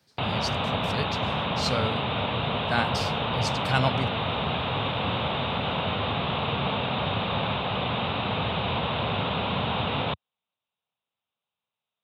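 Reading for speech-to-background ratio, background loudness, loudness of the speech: −4.0 dB, −27.5 LKFS, −31.5 LKFS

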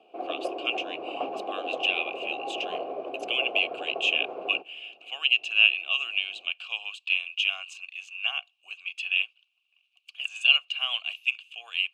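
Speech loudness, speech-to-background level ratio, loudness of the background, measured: −26.0 LKFS, 9.5 dB, −35.5 LKFS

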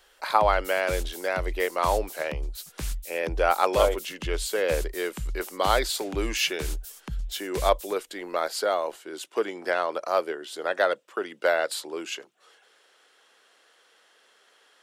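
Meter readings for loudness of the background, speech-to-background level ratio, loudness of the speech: −36.5 LKFS, 9.0 dB, −27.5 LKFS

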